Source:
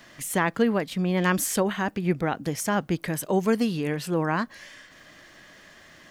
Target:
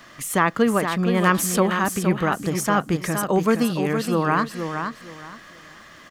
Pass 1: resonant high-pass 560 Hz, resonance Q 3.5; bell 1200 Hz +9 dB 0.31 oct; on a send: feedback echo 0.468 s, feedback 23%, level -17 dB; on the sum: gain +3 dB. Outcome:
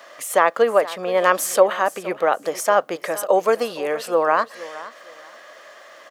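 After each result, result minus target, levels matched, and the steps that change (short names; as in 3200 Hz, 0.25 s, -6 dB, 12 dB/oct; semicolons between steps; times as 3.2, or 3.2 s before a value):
echo-to-direct -10 dB; 500 Hz band +4.0 dB
change: feedback echo 0.468 s, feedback 23%, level -7 dB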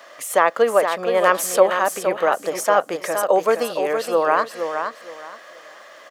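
500 Hz band +4.5 dB
remove: resonant high-pass 560 Hz, resonance Q 3.5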